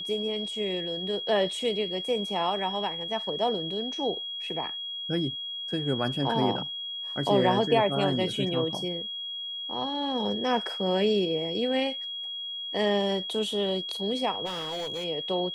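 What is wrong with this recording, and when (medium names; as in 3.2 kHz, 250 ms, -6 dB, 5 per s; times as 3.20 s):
whine 3.3 kHz -33 dBFS
14.45–15.05 s: clipped -29.5 dBFS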